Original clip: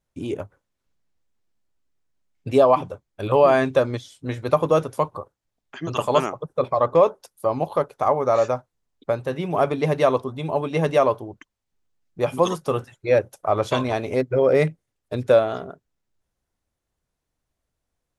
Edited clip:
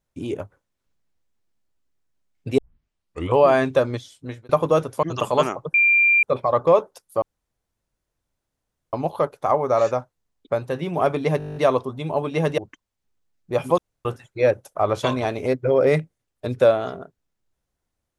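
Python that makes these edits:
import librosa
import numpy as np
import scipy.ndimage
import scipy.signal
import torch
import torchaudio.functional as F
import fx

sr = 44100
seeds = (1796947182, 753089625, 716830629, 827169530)

y = fx.edit(x, sr, fx.tape_start(start_s=2.58, length_s=0.79),
    fx.fade_out_span(start_s=3.98, length_s=0.51, curve='qsin'),
    fx.cut(start_s=5.03, length_s=0.77),
    fx.insert_tone(at_s=6.51, length_s=0.49, hz=2380.0, db=-13.0),
    fx.insert_room_tone(at_s=7.5, length_s=1.71),
    fx.stutter(start_s=9.95, slice_s=0.02, count=10),
    fx.cut(start_s=10.97, length_s=0.29),
    fx.room_tone_fill(start_s=12.46, length_s=0.27), tone=tone)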